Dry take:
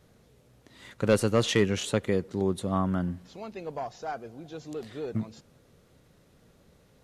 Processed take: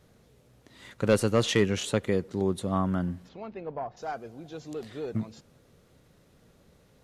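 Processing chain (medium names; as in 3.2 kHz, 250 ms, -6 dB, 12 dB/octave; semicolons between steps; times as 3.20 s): 3.28–3.96 s: low-pass 3.1 kHz -> 1.5 kHz 12 dB/octave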